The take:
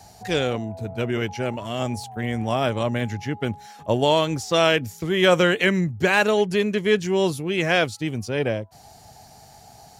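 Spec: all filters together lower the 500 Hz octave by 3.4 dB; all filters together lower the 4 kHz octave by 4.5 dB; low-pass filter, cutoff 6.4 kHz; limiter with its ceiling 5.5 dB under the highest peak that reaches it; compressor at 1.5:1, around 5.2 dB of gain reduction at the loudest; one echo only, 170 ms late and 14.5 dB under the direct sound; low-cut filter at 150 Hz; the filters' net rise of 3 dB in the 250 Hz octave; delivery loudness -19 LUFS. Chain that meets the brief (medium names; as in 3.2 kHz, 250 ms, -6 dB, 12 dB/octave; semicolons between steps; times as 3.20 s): high-pass 150 Hz; low-pass 6.4 kHz; peaking EQ 250 Hz +7.5 dB; peaking EQ 500 Hz -7 dB; peaking EQ 4 kHz -6 dB; compression 1.5:1, threshold -29 dBFS; peak limiter -17.5 dBFS; delay 170 ms -14.5 dB; trim +9.5 dB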